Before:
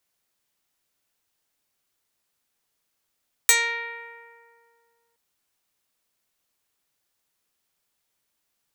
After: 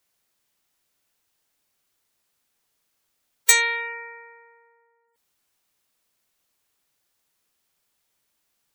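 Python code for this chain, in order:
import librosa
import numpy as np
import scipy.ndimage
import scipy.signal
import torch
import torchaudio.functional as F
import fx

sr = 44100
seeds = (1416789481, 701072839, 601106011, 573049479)

y = fx.spec_gate(x, sr, threshold_db=-20, keep='strong')
y = y * 10.0 ** (3.0 / 20.0)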